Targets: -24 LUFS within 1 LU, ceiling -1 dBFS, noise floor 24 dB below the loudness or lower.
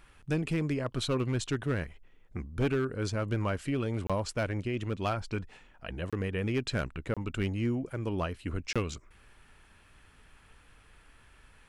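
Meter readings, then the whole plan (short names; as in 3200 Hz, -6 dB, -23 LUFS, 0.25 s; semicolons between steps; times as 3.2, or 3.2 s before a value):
clipped 0.9%; flat tops at -23.0 dBFS; dropouts 4; longest dropout 26 ms; loudness -33.0 LUFS; peak -23.0 dBFS; loudness target -24.0 LUFS
-> clip repair -23 dBFS; interpolate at 4.07/6.1/7.14/8.73, 26 ms; gain +9 dB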